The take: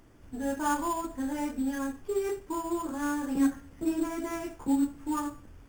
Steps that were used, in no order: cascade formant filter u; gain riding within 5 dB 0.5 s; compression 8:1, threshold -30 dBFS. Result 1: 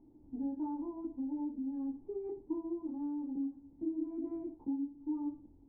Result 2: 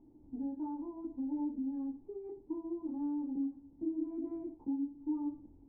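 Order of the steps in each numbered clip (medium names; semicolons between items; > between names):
compression > cascade formant filter > gain riding; gain riding > compression > cascade formant filter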